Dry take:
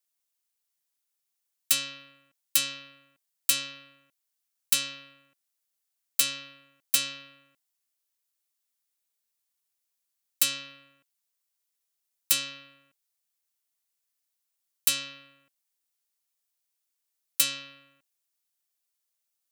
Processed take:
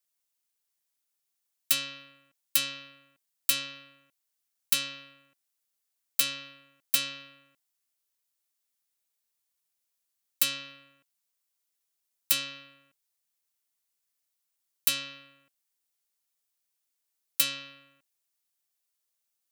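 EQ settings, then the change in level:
dynamic equaliser 7,700 Hz, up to −6 dB, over −40 dBFS, Q 1.1
0.0 dB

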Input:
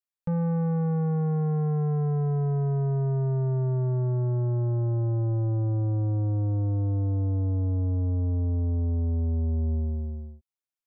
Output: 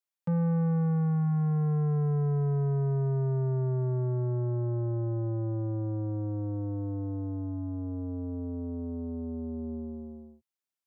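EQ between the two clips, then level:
high-pass filter 130 Hz 24 dB per octave
notch filter 470 Hz, Q 12
dynamic equaliser 740 Hz, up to −5 dB, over −53 dBFS, Q 2.7
0.0 dB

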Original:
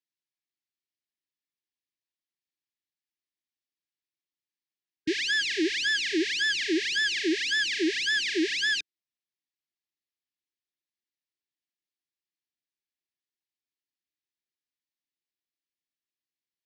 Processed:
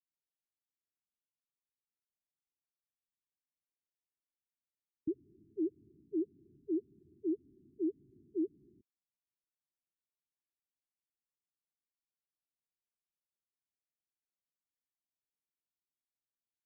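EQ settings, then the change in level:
Gaussian smoothing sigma 21 samples
−3.0 dB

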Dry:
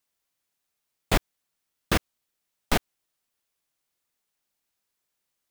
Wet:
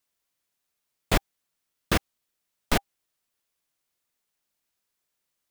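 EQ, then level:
notch filter 800 Hz, Q 26
0.0 dB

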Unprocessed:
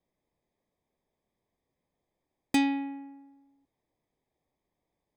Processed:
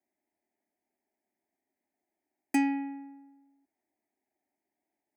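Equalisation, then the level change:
high-pass filter 180 Hz 12 dB per octave
phaser with its sweep stopped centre 740 Hz, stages 8
0.0 dB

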